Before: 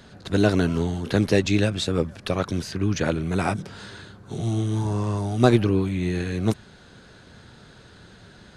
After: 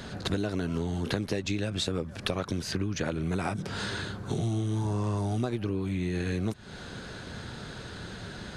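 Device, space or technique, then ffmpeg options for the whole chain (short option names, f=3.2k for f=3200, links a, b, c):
serial compression, leveller first: -af "acompressor=threshold=-24dB:ratio=2,acompressor=threshold=-35dB:ratio=6,volume=7.5dB"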